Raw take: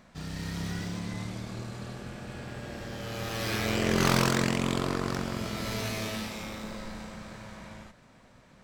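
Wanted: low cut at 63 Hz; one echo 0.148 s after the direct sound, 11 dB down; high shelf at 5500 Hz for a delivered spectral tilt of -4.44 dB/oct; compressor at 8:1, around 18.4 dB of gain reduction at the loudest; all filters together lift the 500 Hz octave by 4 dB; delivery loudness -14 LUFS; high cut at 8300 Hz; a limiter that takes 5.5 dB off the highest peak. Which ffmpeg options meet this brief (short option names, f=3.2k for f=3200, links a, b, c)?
-af "highpass=63,lowpass=8.3k,equalizer=f=500:t=o:g=5,highshelf=f=5.5k:g=8.5,acompressor=threshold=-38dB:ratio=8,alimiter=level_in=9dB:limit=-24dB:level=0:latency=1,volume=-9dB,aecho=1:1:148:0.282,volume=29dB"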